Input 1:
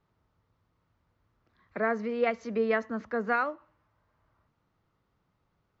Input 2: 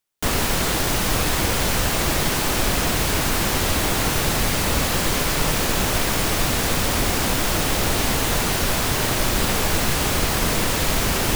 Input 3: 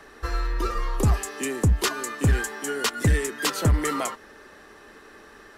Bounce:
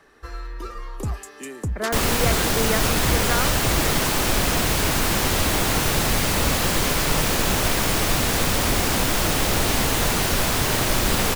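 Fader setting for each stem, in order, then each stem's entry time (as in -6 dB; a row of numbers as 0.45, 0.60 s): +1.0, 0.0, -7.0 dB; 0.00, 1.70, 0.00 s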